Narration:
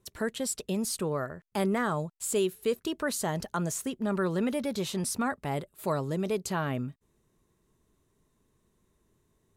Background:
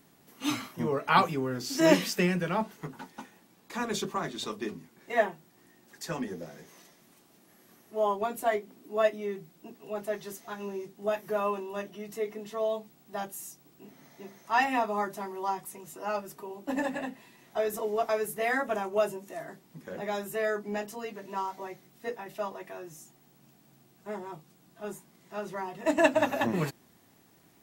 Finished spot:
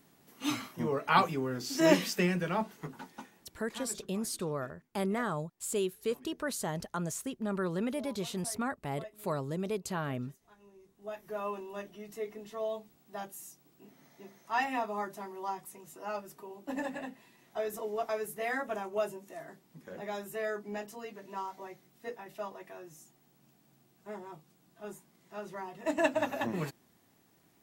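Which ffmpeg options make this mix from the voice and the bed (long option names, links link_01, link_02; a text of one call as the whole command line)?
ffmpeg -i stem1.wav -i stem2.wav -filter_complex "[0:a]adelay=3400,volume=-4.5dB[link_01];[1:a]volume=14dB,afade=type=out:start_time=3.14:duration=0.9:silence=0.105925,afade=type=in:start_time=10.78:duration=0.83:silence=0.149624[link_02];[link_01][link_02]amix=inputs=2:normalize=0" out.wav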